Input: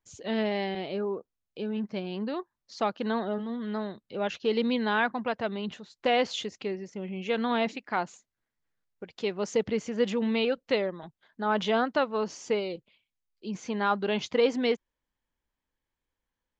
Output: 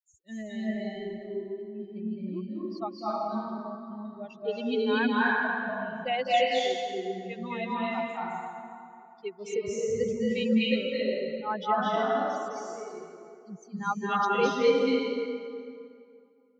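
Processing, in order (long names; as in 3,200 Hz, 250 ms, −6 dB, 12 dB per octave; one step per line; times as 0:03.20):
spectral dynamics exaggerated over time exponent 3
0:11.87–0:12.70: downward compressor 3 to 1, threshold −46 dBFS, peak gain reduction 15.5 dB
convolution reverb RT60 2.4 s, pre-delay 199 ms, DRR −7.5 dB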